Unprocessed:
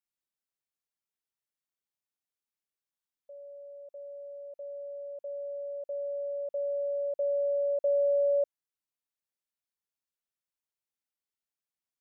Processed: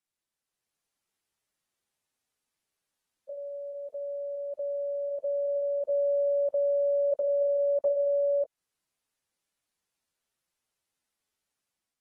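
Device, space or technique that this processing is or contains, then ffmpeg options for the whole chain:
low-bitrate web radio: -af "dynaudnorm=framelen=230:gausssize=5:maxgain=5.5dB,alimiter=level_in=1.5dB:limit=-24dB:level=0:latency=1:release=194,volume=-1.5dB,volume=3dB" -ar 44100 -c:a aac -b:a 32k

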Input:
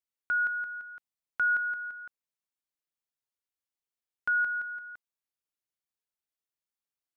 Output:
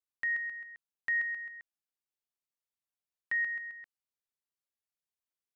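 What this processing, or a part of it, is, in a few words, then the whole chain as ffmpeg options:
nightcore: -af "asetrate=56889,aresample=44100,volume=-4dB"

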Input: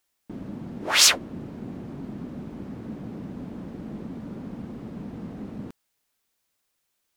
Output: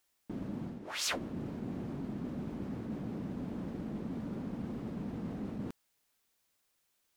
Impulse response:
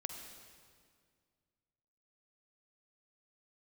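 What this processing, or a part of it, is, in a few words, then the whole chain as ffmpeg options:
compression on the reversed sound: -af "areverse,acompressor=threshold=-34dB:ratio=5,areverse,volume=-1dB"

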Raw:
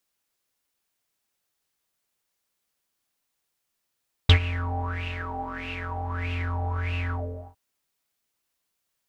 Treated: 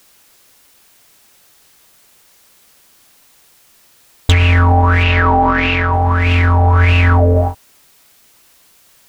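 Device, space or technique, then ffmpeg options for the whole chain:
loud club master: -filter_complex "[0:a]acompressor=threshold=-32dB:ratio=2,asoftclip=type=hard:threshold=-22dB,alimiter=level_in=32.5dB:limit=-1dB:release=50:level=0:latency=1,asettb=1/sr,asplit=3[link_01][link_02][link_03];[link_01]atrim=end=5.034[link_04];[link_02]atrim=start=5.03:end=5.93,asetpts=PTS-STARTPTS,afade=type=in:duration=0.004:curve=qsin,afade=type=out:start_time=0.896:duration=0.004:curve=qsin,lowpass=5000[link_05];[link_03]atrim=start=5.926[link_06];[link_04][link_05]acrossfade=duration=0.004:curve1=hsin:curve2=qsin[link_07];[link_07][link_06]acrossfade=duration=0.004:curve1=qsin:curve2=hsin,volume=-3.5dB"

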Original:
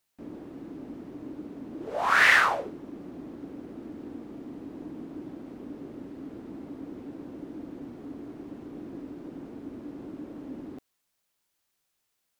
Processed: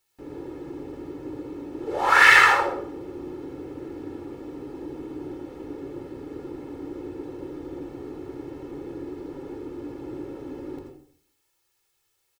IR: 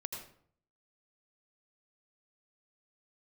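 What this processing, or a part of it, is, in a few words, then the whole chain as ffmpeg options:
microphone above a desk: -filter_complex "[0:a]aecho=1:1:2.3:0.83[link_01];[1:a]atrim=start_sample=2205[link_02];[link_01][link_02]afir=irnorm=-1:irlink=0,volume=4.5dB"

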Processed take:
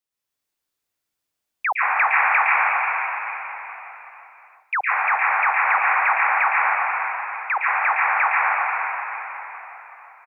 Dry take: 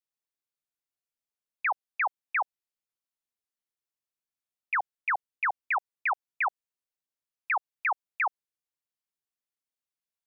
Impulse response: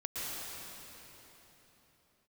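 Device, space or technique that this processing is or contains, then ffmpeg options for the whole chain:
cave: -filter_complex "[0:a]asettb=1/sr,asplit=3[link_01][link_02][link_03];[link_01]atrim=end=1.694[link_04];[link_02]atrim=start=1.69:end=2.36,asetpts=PTS-STARTPTS,afade=type=in:duration=0.004:curve=qsin,afade=type=out:start_time=0.666:duration=0.004:curve=qsin,highshelf=frequency=3000:gain=10.5[link_05];[link_03]atrim=start=2.356[link_06];[link_04][link_05]acrossfade=duration=0.004:curve1=hsin:curve2=qsin[link_07];[link_07][link_06]acrossfade=duration=0.004:curve1=qsin:curve2=hsin,aecho=1:1:368:0.2[link_08];[1:a]atrim=start_sample=2205[link_09];[link_08][link_09]afir=irnorm=-1:irlink=0,volume=8.5dB"

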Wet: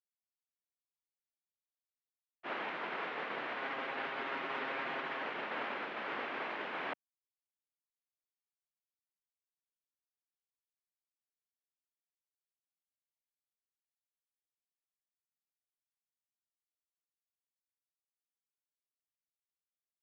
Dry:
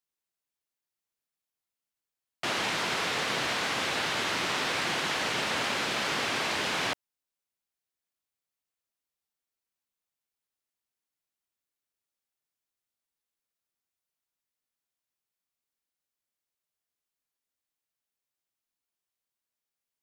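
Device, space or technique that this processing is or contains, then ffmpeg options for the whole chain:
hearing-loss simulation: -filter_complex "[0:a]lowpass=3400,acrossover=split=210 2800:gain=0.0708 1 0.0891[link_01][link_02][link_03];[link_01][link_02][link_03]amix=inputs=3:normalize=0,agate=range=-33dB:threshold=-25dB:ratio=3:detection=peak,asettb=1/sr,asplit=3[link_04][link_05][link_06];[link_04]atrim=end=3.564[link_07];[link_05]atrim=start=3.56:end=5.23,asetpts=PTS-STARTPTS,afade=type=in:duration=0.004:curve=qsin,afade=type=out:start_time=1.666:duration=0.004:curve=qsin,aecho=1:1:7.4:0.51,atrim=end_sample=73647[link_08];[link_06]atrim=start=5.226[link_09];[link_07][link_08]acrossfade=duration=0.004:curve1=hsin:curve2=qsin[link_10];[link_10][link_09]acrossfade=duration=0.004:curve1=qsin:curve2=hsin,volume=1dB"

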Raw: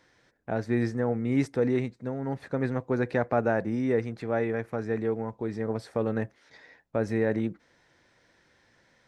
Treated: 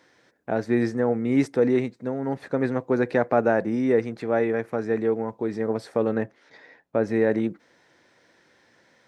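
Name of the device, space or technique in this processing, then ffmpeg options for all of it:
filter by subtraction: -filter_complex "[0:a]asettb=1/sr,asplit=3[link_01][link_02][link_03];[link_01]atrim=end=6.154[link_04];[link_02]atrim=start=6.15:end=7.14,asetpts=PTS-STARTPTS,afade=type=in:duration=0.004:curve=qsin,afade=type=out:start_time=0.986:duration=0.004:curve=qsin,highshelf=frequency=5400:gain=-9[link_05];[link_03]atrim=start=7.136[link_06];[link_04][link_05]acrossfade=duration=0.004:curve1=hsin:curve2=qsin[link_07];[link_07][link_06]acrossfade=duration=0.004:curve1=qsin:curve2=hsin,asplit=2[link_08][link_09];[link_09]lowpass=310,volume=-1[link_10];[link_08][link_10]amix=inputs=2:normalize=0,volume=3.5dB"

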